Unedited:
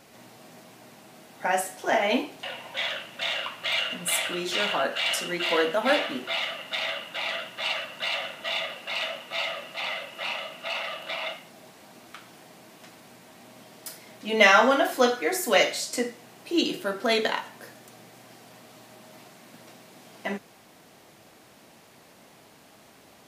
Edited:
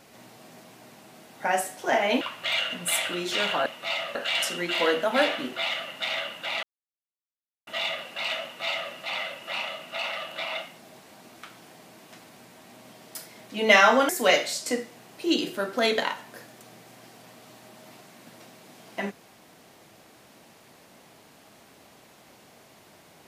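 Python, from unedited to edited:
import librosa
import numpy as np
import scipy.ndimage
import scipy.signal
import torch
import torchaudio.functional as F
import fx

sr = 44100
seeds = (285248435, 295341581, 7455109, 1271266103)

y = fx.edit(x, sr, fx.cut(start_s=2.21, length_s=1.2),
    fx.silence(start_s=7.34, length_s=1.04),
    fx.duplicate(start_s=9.14, length_s=0.49, to_s=4.86),
    fx.cut(start_s=14.8, length_s=0.56), tone=tone)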